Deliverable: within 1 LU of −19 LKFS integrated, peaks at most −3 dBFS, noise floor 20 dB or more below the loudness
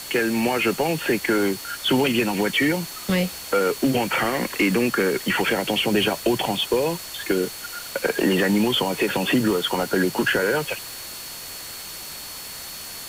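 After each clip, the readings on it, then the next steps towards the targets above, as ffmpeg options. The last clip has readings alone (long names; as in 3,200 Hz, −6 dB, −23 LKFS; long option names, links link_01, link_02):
interfering tone 4,400 Hz; level of the tone −40 dBFS; background noise floor −36 dBFS; target noise floor −42 dBFS; integrated loudness −22.0 LKFS; sample peak −9.0 dBFS; target loudness −19.0 LKFS
→ -af "bandreject=frequency=4400:width=30"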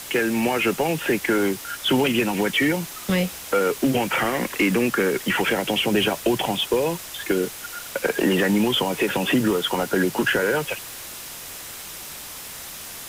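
interfering tone none found; background noise floor −37 dBFS; target noise floor −42 dBFS
→ -af "afftdn=noise_reduction=6:noise_floor=-37"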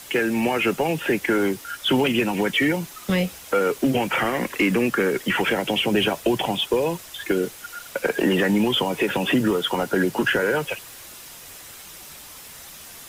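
background noise floor −42 dBFS; target noise floor −43 dBFS
→ -af "afftdn=noise_reduction=6:noise_floor=-42"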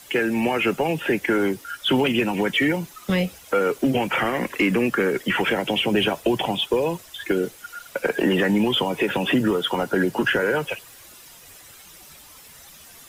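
background noise floor −47 dBFS; integrated loudness −22.5 LKFS; sample peak −9.5 dBFS; target loudness −19.0 LKFS
→ -af "volume=3.5dB"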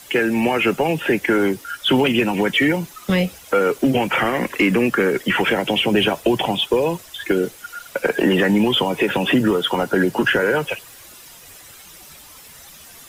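integrated loudness −19.0 LKFS; sample peak −6.0 dBFS; background noise floor −43 dBFS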